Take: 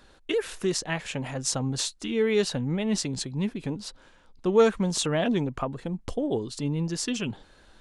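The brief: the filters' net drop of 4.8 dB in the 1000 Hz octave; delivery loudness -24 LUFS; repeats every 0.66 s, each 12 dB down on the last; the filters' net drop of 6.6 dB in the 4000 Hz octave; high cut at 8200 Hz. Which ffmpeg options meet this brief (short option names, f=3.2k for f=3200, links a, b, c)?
-af "lowpass=8.2k,equalizer=f=1k:t=o:g=-6.5,equalizer=f=4k:t=o:g=-8,aecho=1:1:660|1320|1980:0.251|0.0628|0.0157,volume=5dB"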